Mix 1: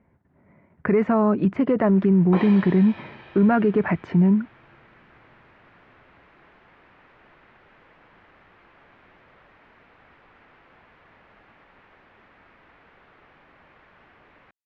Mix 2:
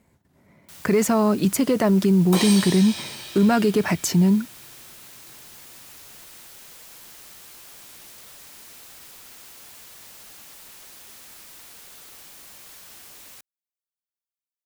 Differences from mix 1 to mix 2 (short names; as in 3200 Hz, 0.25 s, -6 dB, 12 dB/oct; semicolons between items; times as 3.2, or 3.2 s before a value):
first sound: entry -1.10 s; master: remove LPF 2100 Hz 24 dB/oct